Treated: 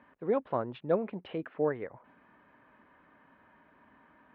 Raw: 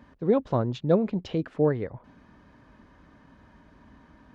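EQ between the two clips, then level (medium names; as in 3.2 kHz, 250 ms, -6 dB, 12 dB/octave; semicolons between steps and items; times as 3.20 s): high-pass 740 Hz 6 dB/octave; low-pass 2.8 kHz 24 dB/octave; distance through air 97 m; 0.0 dB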